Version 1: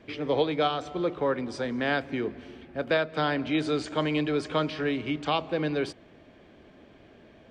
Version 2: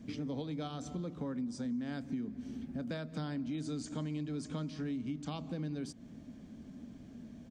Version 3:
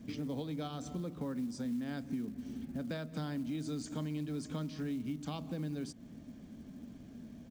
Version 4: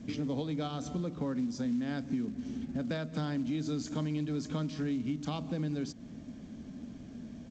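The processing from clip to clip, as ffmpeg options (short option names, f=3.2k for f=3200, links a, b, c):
-af "firequalizer=gain_entry='entry(100,0);entry(240,9);entry(350,-11);entry(2600,-14);entry(6400,5);entry(10000,3)':delay=0.05:min_phase=1,acompressor=threshold=-40dB:ratio=4,volume=2.5dB"
-af "acrusher=bits=7:mode=log:mix=0:aa=0.000001"
-af "volume=4.5dB" -ar 16000 -c:a g722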